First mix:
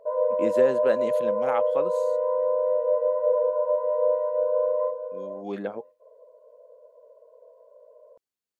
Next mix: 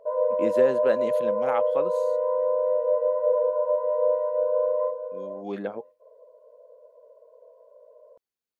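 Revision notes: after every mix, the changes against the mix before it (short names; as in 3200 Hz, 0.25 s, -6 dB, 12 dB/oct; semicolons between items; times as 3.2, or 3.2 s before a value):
first voice: add bell 7700 Hz -4.5 dB 0.43 oct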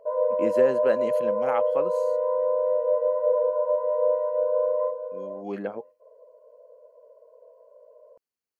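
master: add Butterworth band-stop 3600 Hz, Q 5.4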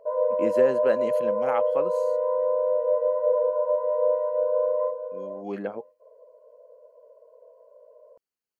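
second voice -5.0 dB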